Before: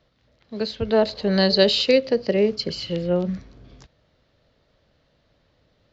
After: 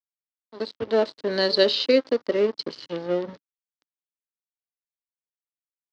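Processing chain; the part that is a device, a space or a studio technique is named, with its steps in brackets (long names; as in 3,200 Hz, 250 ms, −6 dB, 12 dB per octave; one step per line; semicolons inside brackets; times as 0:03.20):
blown loudspeaker (dead-zone distortion −31.5 dBFS; loudspeaker in its box 190–5,300 Hz, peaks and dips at 190 Hz −9 dB, 290 Hz +5 dB, 740 Hz −5 dB, 2,500 Hz −5 dB)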